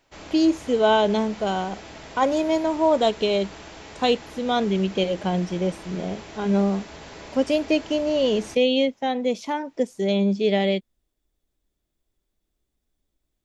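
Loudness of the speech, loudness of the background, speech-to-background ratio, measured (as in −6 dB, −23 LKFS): −23.5 LKFS, −41.0 LKFS, 17.5 dB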